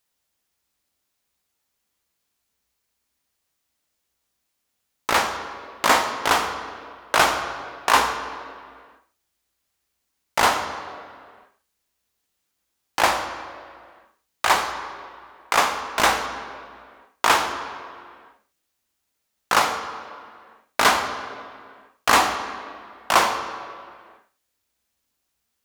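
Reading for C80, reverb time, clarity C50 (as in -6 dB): 9.0 dB, no single decay rate, 8.0 dB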